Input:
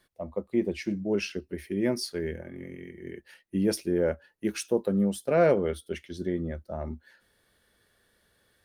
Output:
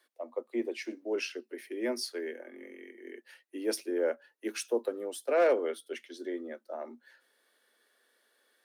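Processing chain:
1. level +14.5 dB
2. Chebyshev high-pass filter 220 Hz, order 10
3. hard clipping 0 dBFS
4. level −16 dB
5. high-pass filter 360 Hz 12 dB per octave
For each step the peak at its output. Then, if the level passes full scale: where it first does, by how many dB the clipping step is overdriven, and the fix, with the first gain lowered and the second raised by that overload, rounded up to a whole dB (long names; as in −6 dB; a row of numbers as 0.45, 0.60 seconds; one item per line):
+3.0, +3.5, 0.0, −16.0, −14.5 dBFS
step 1, 3.5 dB
step 1 +10.5 dB, step 4 −12 dB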